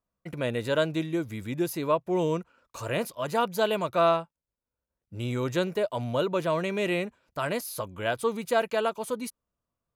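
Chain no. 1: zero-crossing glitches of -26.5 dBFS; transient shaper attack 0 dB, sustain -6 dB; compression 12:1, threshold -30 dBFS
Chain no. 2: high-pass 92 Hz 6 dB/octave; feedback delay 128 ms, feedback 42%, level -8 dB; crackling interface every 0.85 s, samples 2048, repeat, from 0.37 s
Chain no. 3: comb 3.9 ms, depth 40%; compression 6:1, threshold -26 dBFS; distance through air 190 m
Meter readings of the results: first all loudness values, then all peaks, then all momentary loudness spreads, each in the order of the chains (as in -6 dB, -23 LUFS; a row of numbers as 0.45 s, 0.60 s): -34.5 LUFS, -28.5 LUFS, -33.0 LUFS; -21.0 dBFS, -10.5 dBFS, -18.0 dBFS; 3 LU, 10 LU, 7 LU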